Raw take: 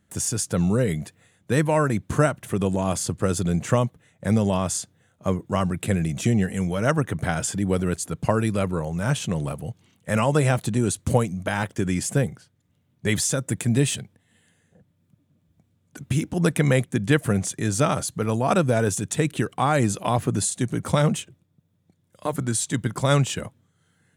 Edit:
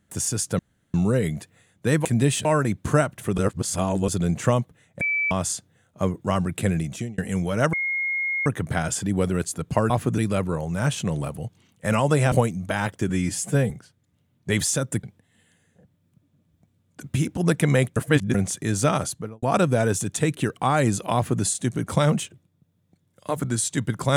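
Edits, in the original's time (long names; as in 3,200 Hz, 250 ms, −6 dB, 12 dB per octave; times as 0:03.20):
0:00.59: splice in room tone 0.35 s
0:02.63–0:03.33: reverse
0:04.26–0:04.56: beep over 2,310 Hz −20.5 dBFS
0:06.01–0:06.43: fade out
0:06.98: insert tone 2,150 Hz −22.5 dBFS 0.73 s
0:10.56–0:11.09: remove
0:11.86–0:12.27: time-stretch 1.5×
0:13.60–0:14.00: move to 0:01.70
0:16.93–0:17.31: reverse
0:18.02–0:18.39: fade out and dull
0:20.11–0:20.39: duplicate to 0:08.42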